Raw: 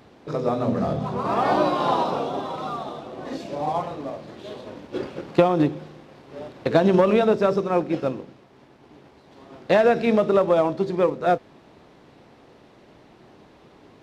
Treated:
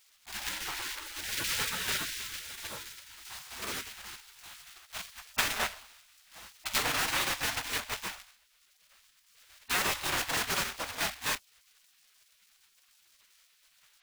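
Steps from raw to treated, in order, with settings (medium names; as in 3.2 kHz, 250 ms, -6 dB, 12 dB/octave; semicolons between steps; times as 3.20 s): block-companded coder 3-bit; dynamic bell 1.3 kHz, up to +6 dB, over -33 dBFS, Q 0.74; spectral gate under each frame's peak -20 dB weak; trim -3.5 dB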